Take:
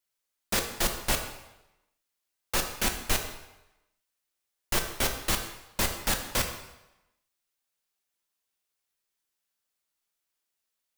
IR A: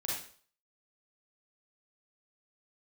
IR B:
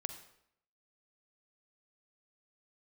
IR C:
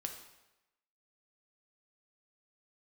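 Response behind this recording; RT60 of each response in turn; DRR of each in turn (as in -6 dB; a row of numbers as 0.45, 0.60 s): C; 0.50, 0.70, 0.95 s; -5.5, 8.0, 3.5 dB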